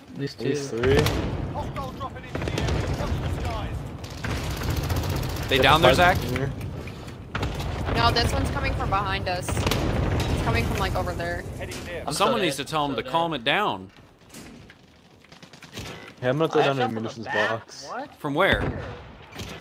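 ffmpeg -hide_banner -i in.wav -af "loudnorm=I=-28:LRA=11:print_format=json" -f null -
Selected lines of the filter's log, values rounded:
"input_i" : "-25.1",
"input_tp" : "-2.3",
"input_lra" : "6.2",
"input_thresh" : "-35.8",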